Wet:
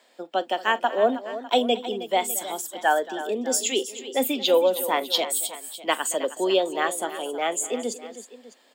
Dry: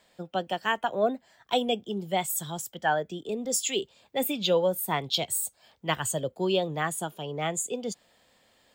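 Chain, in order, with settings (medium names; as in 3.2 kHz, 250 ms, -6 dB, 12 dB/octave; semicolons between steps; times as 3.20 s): elliptic high-pass 240 Hz, stop band 50 dB; treble shelf 11 kHz -3 dB; multi-tap echo 42/227/316/602 ms -19.5/-18/-13.5/-18 dB; trim +5 dB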